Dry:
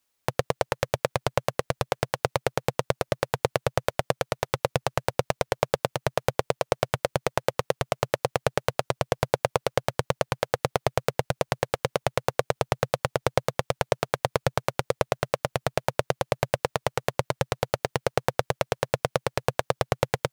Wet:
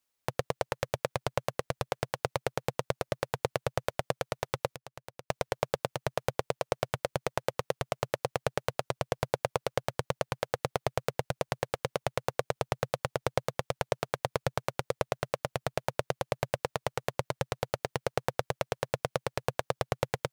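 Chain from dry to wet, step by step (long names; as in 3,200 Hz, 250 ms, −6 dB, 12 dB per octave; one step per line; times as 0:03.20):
0:04.67–0:05.30: downward compressor 10 to 1, threshold −36 dBFS, peak gain reduction 19 dB
level −6 dB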